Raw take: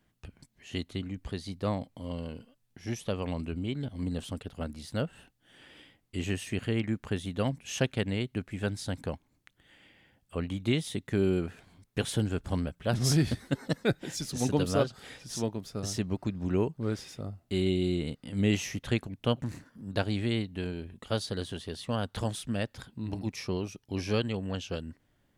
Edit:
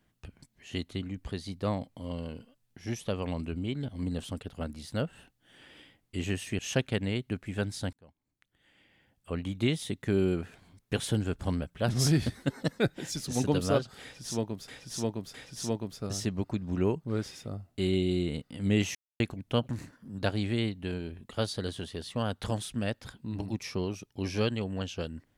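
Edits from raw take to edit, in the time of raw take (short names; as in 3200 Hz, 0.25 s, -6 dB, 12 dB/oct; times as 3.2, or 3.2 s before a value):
6.59–7.64 cut
8.98–10.57 fade in
15.07–15.73 loop, 3 plays
18.68–18.93 mute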